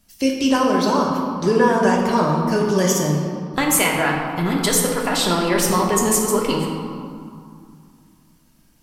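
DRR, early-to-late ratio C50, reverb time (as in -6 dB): -1.5 dB, 2.0 dB, 2.5 s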